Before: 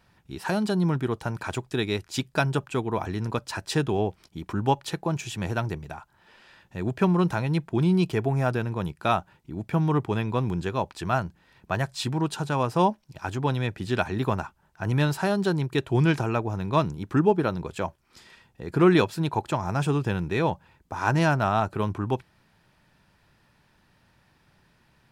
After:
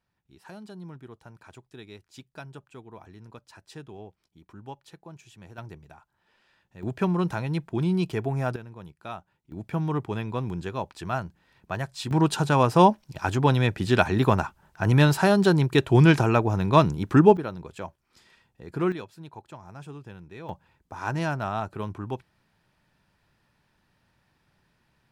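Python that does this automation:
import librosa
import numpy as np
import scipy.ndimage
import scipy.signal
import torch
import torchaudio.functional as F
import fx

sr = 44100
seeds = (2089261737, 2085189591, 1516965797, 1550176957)

y = fx.gain(x, sr, db=fx.steps((0.0, -18.0), (5.58, -12.0), (6.83, -3.0), (8.56, -14.0), (9.52, -4.0), (12.11, 5.0), (17.37, -7.0), (18.92, -17.0), (20.49, -6.0)))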